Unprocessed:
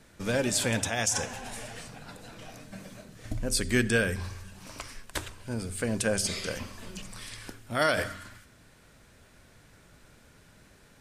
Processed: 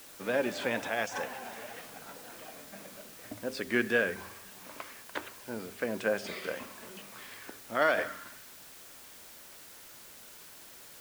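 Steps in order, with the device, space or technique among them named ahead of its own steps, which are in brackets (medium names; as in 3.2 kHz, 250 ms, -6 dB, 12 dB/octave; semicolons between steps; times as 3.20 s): wax cylinder (band-pass 310–2400 Hz; wow and flutter; white noise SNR 15 dB)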